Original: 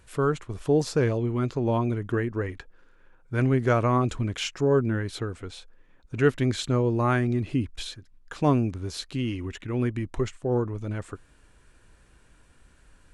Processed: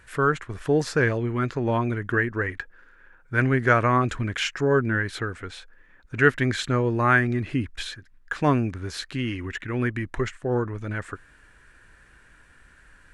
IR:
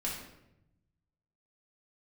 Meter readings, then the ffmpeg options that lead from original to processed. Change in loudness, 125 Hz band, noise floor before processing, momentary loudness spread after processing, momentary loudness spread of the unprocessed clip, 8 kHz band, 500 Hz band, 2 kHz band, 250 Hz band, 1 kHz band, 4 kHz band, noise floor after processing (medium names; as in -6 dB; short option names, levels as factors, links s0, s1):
+2.0 dB, 0.0 dB, -58 dBFS, 15 LU, 14 LU, +0.5 dB, +0.5 dB, +11.0 dB, 0.0 dB, +5.0 dB, +2.0 dB, -55 dBFS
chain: -af "equalizer=f=1700:t=o:w=0.88:g=13"